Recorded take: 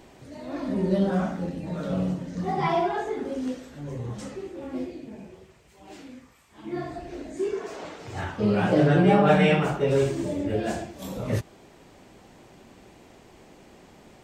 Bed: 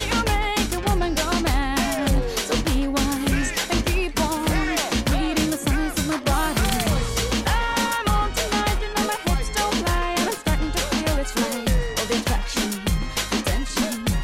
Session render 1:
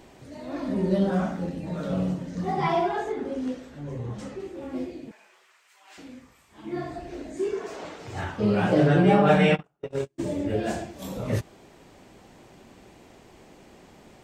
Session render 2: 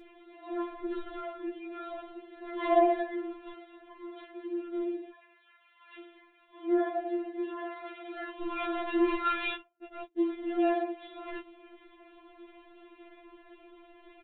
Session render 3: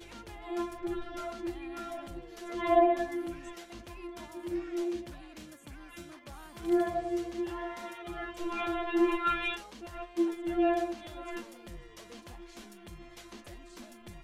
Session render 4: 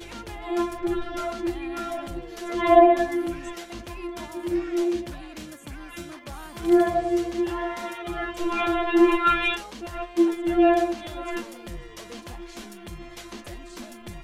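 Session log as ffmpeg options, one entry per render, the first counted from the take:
ffmpeg -i in.wav -filter_complex "[0:a]asettb=1/sr,asplit=3[link_01][link_02][link_03];[link_01]atrim=end=3.124[link_04];[link_02]atrim=start=3.12:end=4.4,asetpts=PTS-STARTPTS,afade=type=in:duration=0.004:curve=qsin,afade=type=out:start_time=1.276:duration=0.004:curve=qsin,highshelf=frequency=5200:gain=-7.5[link_05];[link_03]atrim=start=4.396[link_06];[link_04][link_05]acrossfade=duration=0.004:curve1=hsin:curve2=qsin[link_07];[link_07][link_06]acrossfade=duration=0.004:curve1=qsin:curve2=hsin,asettb=1/sr,asplit=3[link_08][link_09][link_10];[link_08]atrim=end=5.114[link_11];[link_09]atrim=start=5.11:end=5.98,asetpts=PTS-STARTPTS,afade=type=in:duration=0.004:curve=qsin,afade=type=out:start_time=0.866:duration=0.004:curve=qsin,highpass=frequency=1300:width_type=q:width=1.5[link_12];[link_10]atrim=start=5.976[link_13];[link_11][link_12]acrossfade=duration=0.004:curve1=hsin:curve2=qsin[link_14];[link_14][link_13]acrossfade=duration=0.004:curve1=qsin:curve2=hsin,asplit=3[link_15][link_16][link_17];[link_15]afade=type=out:start_time=9.54:duration=0.02[link_18];[link_16]agate=range=-47dB:threshold=-20dB:ratio=16:release=100:detection=peak,afade=type=in:start_time=9.54:duration=0.02,afade=type=out:start_time=10.18:duration=0.02[link_19];[link_17]afade=type=in:start_time=10.18:duration=0.02[link_20];[link_18][link_19][link_20]amix=inputs=3:normalize=0" out.wav
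ffmpeg -i in.wav -af "aresample=8000,asoftclip=type=tanh:threshold=-21.5dB,aresample=44100,afftfilt=real='re*4*eq(mod(b,16),0)':imag='im*4*eq(mod(b,16),0)':win_size=2048:overlap=0.75" out.wav
ffmpeg -i in.wav -i bed.wav -filter_complex "[1:a]volume=-27dB[link_01];[0:a][link_01]amix=inputs=2:normalize=0" out.wav
ffmpeg -i in.wav -af "volume=9dB" out.wav

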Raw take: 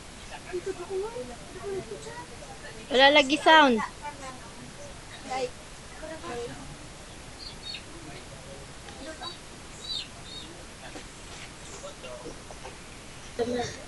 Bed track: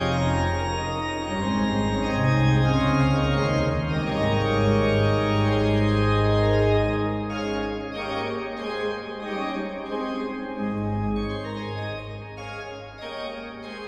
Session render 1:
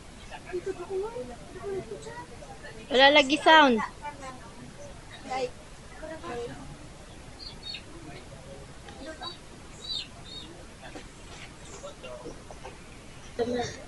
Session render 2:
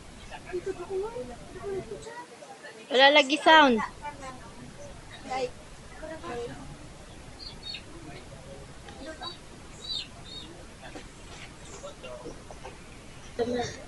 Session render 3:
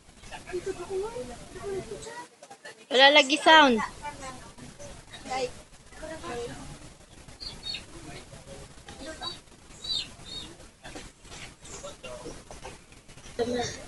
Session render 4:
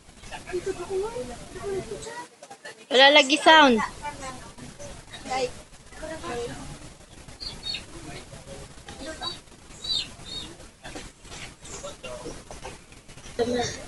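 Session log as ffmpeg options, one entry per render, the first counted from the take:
ffmpeg -i in.wav -af "afftdn=noise_reduction=6:noise_floor=-45" out.wav
ffmpeg -i in.wav -filter_complex "[0:a]asettb=1/sr,asplit=3[link_01][link_02][link_03];[link_01]atrim=end=2.044[link_04];[link_02]atrim=start=2.04:end=3.47,asetpts=PTS-STARTPTS,afade=type=in:duration=0.004:curve=qsin,afade=type=out:start_time=1.426:duration=0.004:curve=qsin,highpass=260[link_05];[link_03]atrim=start=3.466[link_06];[link_04][link_05]acrossfade=duration=0.004:curve1=hsin:curve2=qsin[link_07];[link_07][link_06]acrossfade=duration=0.004:curve1=qsin:curve2=hsin" out.wav
ffmpeg -i in.wav -af "agate=range=-11dB:threshold=-44dB:ratio=16:detection=peak,highshelf=frequency=3900:gain=6.5" out.wav
ffmpeg -i in.wav -af "volume=3.5dB,alimiter=limit=-2dB:level=0:latency=1" out.wav

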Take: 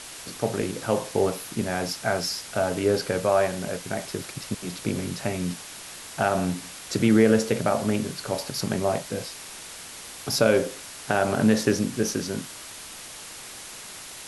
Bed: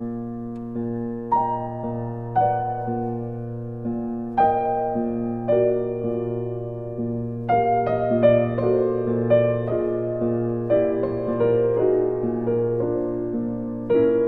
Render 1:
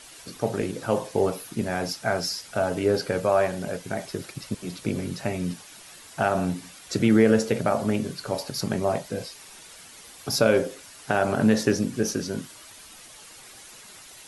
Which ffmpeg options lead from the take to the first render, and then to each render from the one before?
ffmpeg -i in.wav -af "afftdn=noise_reduction=9:noise_floor=-41" out.wav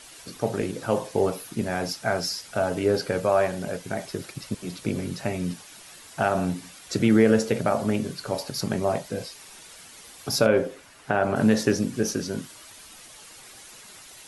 ffmpeg -i in.wav -filter_complex "[0:a]asettb=1/sr,asplit=3[link_01][link_02][link_03];[link_01]atrim=end=10.464[link_04];[link_02]atrim=start=10.46:end=11.36,asetpts=PTS-STARTPTS,afade=type=in:duration=0.004:curve=qsin,afade=type=out:start_time=0.896:duration=0.004:curve=qsin,acrossover=split=2900[link_05][link_06];[link_06]acompressor=threshold=-53dB:ratio=4:attack=1:release=60[link_07];[link_05][link_07]amix=inputs=2:normalize=0[link_08];[link_03]atrim=start=11.356[link_09];[link_04][link_08]acrossfade=duration=0.004:curve1=hsin:curve2=qsin[link_10];[link_10][link_09]acrossfade=duration=0.004:curve1=qsin:curve2=hsin" out.wav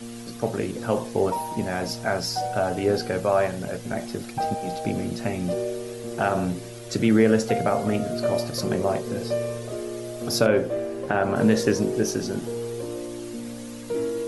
ffmpeg -i in.wav -i bed.wav -filter_complex "[1:a]volume=-9dB[link_01];[0:a][link_01]amix=inputs=2:normalize=0" out.wav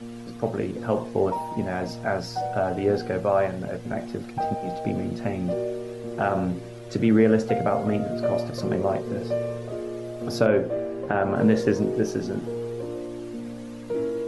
ffmpeg -i in.wav -af "lowpass=frequency=1900:poles=1" out.wav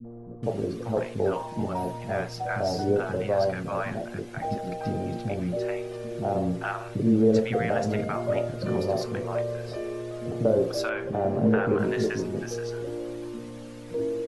ffmpeg -i in.wav -filter_complex "[0:a]acrossover=split=270|850[link_01][link_02][link_03];[link_02]adelay=40[link_04];[link_03]adelay=430[link_05];[link_01][link_04][link_05]amix=inputs=3:normalize=0" out.wav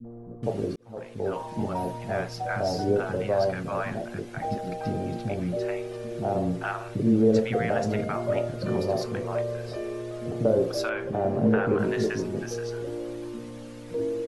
ffmpeg -i in.wav -filter_complex "[0:a]asplit=2[link_01][link_02];[link_01]atrim=end=0.76,asetpts=PTS-STARTPTS,afade=type=out:start_time=0.756:duration=0.004:curve=hsin[link_03];[link_02]atrim=start=0.76,asetpts=PTS-STARTPTS,afade=type=in:duration=0.79[link_04];[link_03][link_04]concat=n=2:v=0:a=1" out.wav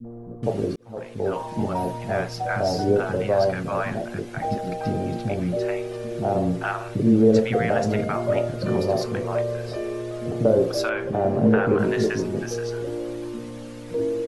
ffmpeg -i in.wav -af "volume=4dB" out.wav

